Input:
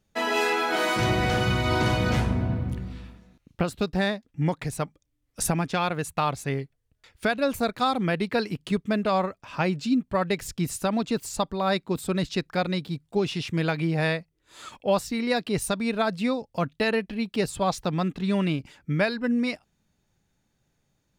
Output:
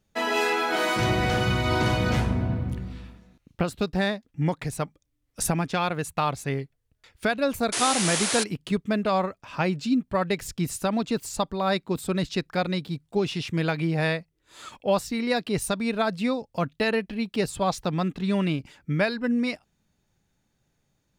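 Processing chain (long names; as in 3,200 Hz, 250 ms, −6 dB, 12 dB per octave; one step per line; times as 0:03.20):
sound drawn into the spectrogram noise, 0:07.72–0:08.44, 270–11,000 Hz −27 dBFS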